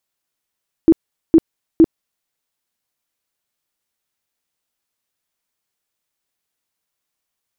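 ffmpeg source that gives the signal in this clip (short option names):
-f lavfi -i "aevalsrc='0.596*sin(2*PI*326*mod(t,0.46))*lt(mod(t,0.46),14/326)':d=1.38:s=44100"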